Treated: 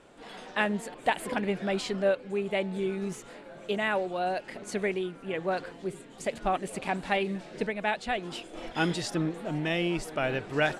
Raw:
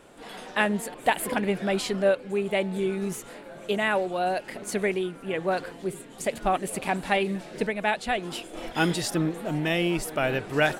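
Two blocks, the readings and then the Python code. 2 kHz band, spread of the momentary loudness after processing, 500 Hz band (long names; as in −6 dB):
−3.5 dB, 9 LU, −3.5 dB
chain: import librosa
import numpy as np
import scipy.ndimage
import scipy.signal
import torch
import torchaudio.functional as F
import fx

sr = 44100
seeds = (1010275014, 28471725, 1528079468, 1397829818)

y = scipy.signal.sosfilt(scipy.signal.butter(2, 7600.0, 'lowpass', fs=sr, output='sos'), x)
y = y * 10.0 ** (-3.5 / 20.0)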